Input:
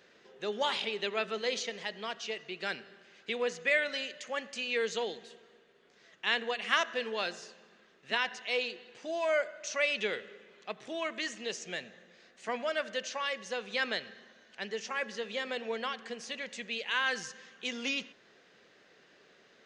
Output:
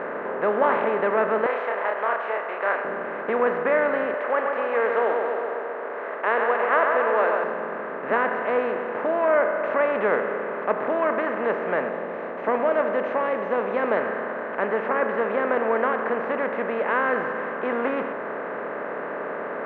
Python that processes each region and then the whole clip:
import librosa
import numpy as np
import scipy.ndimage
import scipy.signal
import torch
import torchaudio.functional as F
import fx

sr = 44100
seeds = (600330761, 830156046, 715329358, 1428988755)

y = fx.chain(x, sr, fx.highpass(hz=710.0, slope=24),
    fx.doubler(ms=30.0, db=-4), at=(1.46, 2.85))
y = fx.chain(y, sr, fx.highpass(hz=440.0, slope=24),
    fx.echo_split(split_hz=1600.0, low_ms=135, high_ms=94, feedback_pct=52, wet_db=-9), at=(4.14, 7.44))
y = fx.chain(y, sr, fx.lowpass_res(hz=6600.0, q=5.3),
    fx.peak_eq(hz=1500.0, db=-12.5, octaves=0.74), at=(11.89, 13.97))
y = fx.bin_compress(y, sr, power=0.4)
y = scipy.signal.sosfilt(scipy.signal.butter(4, 1400.0, 'lowpass', fs=sr, output='sos'), y)
y = y * librosa.db_to_amplitude(7.5)